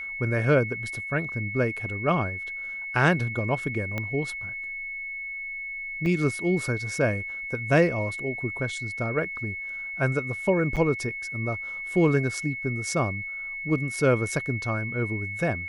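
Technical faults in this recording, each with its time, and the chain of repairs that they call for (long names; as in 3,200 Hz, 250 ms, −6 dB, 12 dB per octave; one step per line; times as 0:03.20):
whistle 2,200 Hz −32 dBFS
0:03.98: click −16 dBFS
0:06.06: drop-out 2.2 ms
0:10.76–0:10.77: drop-out 7.1 ms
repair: click removal
notch filter 2,200 Hz, Q 30
repair the gap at 0:06.06, 2.2 ms
repair the gap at 0:10.76, 7.1 ms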